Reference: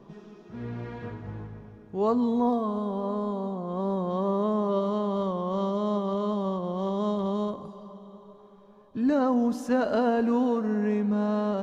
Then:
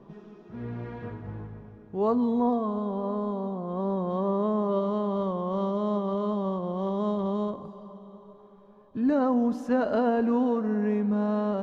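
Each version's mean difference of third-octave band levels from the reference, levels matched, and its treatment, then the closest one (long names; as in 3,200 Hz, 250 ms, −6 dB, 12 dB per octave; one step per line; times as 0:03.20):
1.5 dB: high-shelf EQ 4,000 Hz −11.5 dB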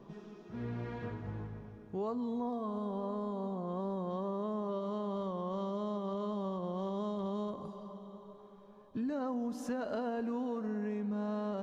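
2.5 dB: downward compressor, threshold −31 dBFS, peak gain reduction 11 dB
level −3 dB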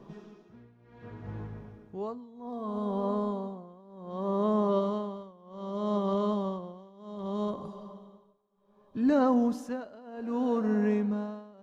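5.0 dB: amplitude tremolo 0.65 Hz, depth 95%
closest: first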